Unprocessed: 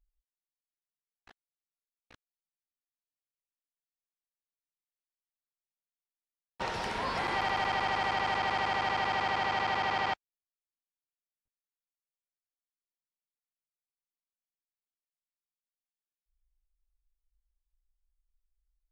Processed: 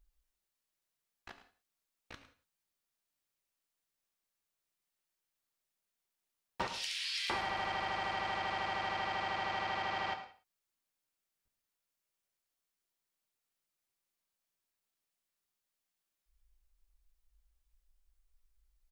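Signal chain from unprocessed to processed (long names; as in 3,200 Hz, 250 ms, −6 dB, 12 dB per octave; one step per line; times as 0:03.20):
0:06.67–0:07.30: inverse Chebyshev high-pass filter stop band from 810 Hz, stop band 60 dB
downward compressor 12 to 1, threshold −41 dBFS, peak gain reduction 14.5 dB
single-tap delay 106 ms −14 dB
reverb whose tail is shaped and stops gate 210 ms falling, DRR 6.5 dB
level +7 dB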